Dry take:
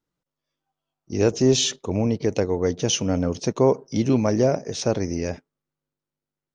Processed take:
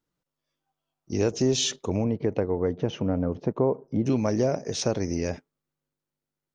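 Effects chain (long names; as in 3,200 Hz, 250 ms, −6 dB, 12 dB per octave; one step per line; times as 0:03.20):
0:02.03–0:04.05: low-pass filter 2,100 Hz → 1,000 Hz 12 dB per octave
downward compressor 2 to 1, threshold −23 dBFS, peak gain reduction 6.5 dB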